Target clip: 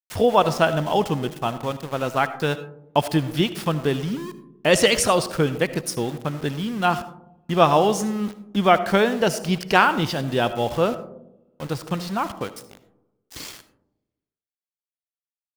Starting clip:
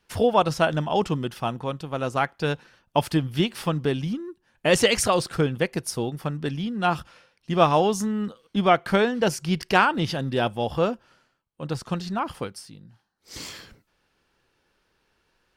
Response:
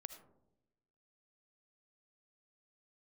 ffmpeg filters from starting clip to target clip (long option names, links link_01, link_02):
-filter_complex "[0:a]aeval=exprs='val(0)*gte(abs(val(0)),0.0158)':channel_layout=same,asplit=2[link_01][link_02];[1:a]atrim=start_sample=2205,lowshelf=frequency=180:gain=-4.5[link_03];[link_02][link_03]afir=irnorm=-1:irlink=0,volume=8.5dB[link_04];[link_01][link_04]amix=inputs=2:normalize=0,volume=-5dB"